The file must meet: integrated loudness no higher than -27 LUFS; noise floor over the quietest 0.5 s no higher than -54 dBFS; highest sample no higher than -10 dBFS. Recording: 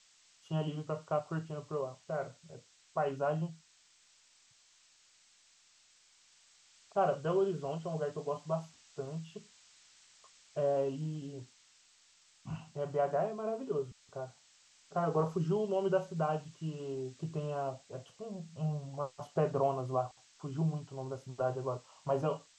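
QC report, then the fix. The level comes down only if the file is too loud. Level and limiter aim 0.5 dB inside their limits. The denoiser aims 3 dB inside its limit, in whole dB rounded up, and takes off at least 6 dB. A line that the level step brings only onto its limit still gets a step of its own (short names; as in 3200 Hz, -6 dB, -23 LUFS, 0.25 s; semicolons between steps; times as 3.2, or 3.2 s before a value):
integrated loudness -36.5 LUFS: OK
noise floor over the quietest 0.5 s -66 dBFS: OK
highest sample -18.5 dBFS: OK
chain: none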